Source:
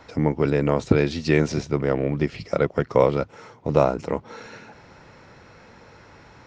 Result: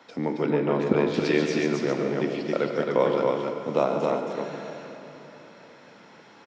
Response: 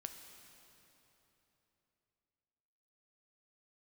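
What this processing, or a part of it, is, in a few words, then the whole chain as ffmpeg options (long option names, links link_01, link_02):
stadium PA: -filter_complex "[0:a]highpass=frequency=170:width=0.5412,highpass=frequency=170:width=1.3066,equalizer=frequency=3300:width_type=o:width=0.34:gain=6.5,aecho=1:1:145.8|271.1:0.316|0.708[link_01];[1:a]atrim=start_sample=2205[link_02];[link_01][link_02]afir=irnorm=-1:irlink=0,asettb=1/sr,asplit=3[link_03][link_04][link_05];[link_03]atrim=end=0.464[link_06];[link_04]atrim=start=0.46:end=1.14,asetpts=PTS-STARTPTS,afade=type=in:duration=0.004:curve=qsin,afade=type=out:start_time=0.676:duration=0.004:curve=qsin,aemphasis=mode=reproduction:type=75fm[link_07];[link_05]atrim=start=1.136[link_08];[link_06][link_07]acrossfade=duration=0.004:curve1=hsin:curve2=qsin[link_09];[link_09][link_08]acrossfade=duration=0.004:curve1=qsin:curve2=hsin"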